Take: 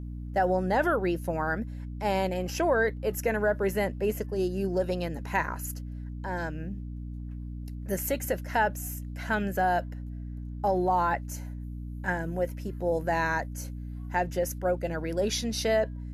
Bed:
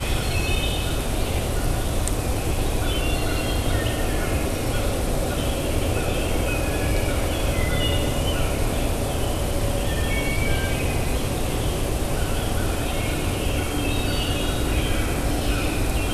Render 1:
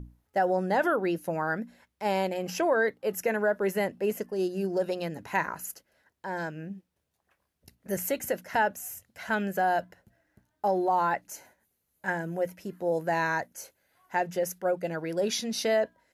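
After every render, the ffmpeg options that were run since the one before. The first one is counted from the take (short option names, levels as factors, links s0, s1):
-af "bandreject=f=60:t=h:w=6,bandreject=f=120:t=h:w=6,bandreject=f=180:t=h:w=6,bandreject=f=240:t=h:w=6,bandreject=f=300:t=h:w=6"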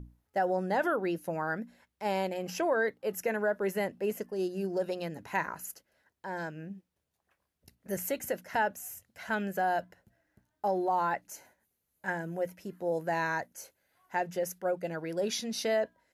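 -af "volume=0.668"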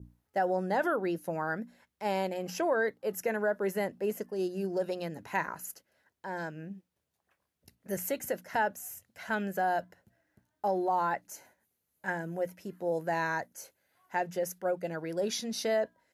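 -af "highpass=72,adynamicequalizer=threshold=0.002:dfrequency=2600:dqfactor=2.1:tfrequency=2600:tqfactor=2.1:attack=5:release=100:ratio=0.375:range=2:mode=cutabove:tftype=bell"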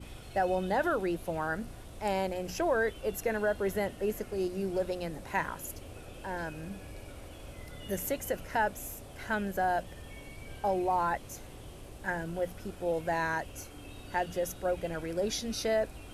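-filter_complex "[1:a]volume=0.0668[s0];[0:a][s0]amix=inputs=2:normalize=0"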